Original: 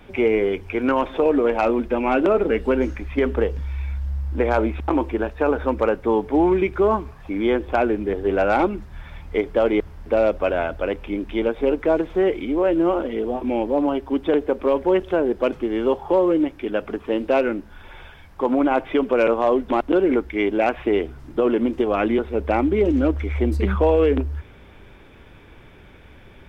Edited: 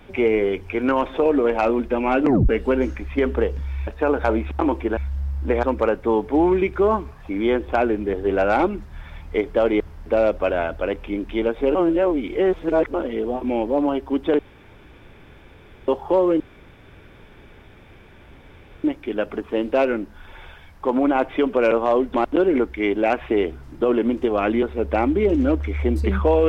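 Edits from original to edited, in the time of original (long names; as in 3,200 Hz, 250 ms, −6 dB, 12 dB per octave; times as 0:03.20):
0:02.22: tape stop 0.27 s
0:03.87–0:04.53: swap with 0:05.26–0:05.63
0:11.75–0:12.94: reverse
0:14.39–0:15.88: fill with room tone
0:16.40: splice in room tone 2.44 s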